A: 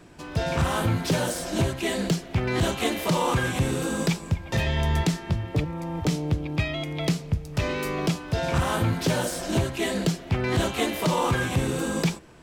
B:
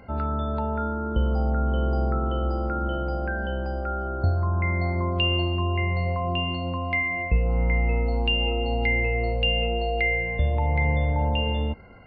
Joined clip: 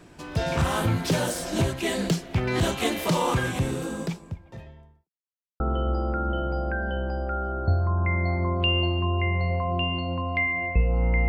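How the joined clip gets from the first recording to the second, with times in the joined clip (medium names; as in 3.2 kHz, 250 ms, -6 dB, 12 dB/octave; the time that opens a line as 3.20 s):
A
3.12–5.10 s: studio fade out
5.10–5.60 s: mute
5.60 s: go over to B from 2.16 s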